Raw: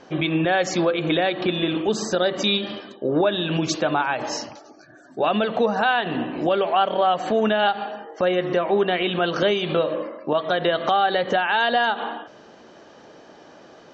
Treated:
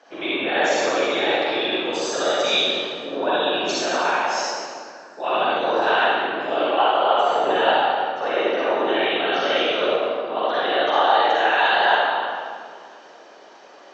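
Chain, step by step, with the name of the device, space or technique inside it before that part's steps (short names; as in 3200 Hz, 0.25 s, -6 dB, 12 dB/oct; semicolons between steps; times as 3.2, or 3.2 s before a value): whispering ghost (whisperiser; HPF 510 Hz 12 dB/oct; reverb RT60 2.0 s, pre-delay 41 ms, DRR -9 dB); gain -5.5 dB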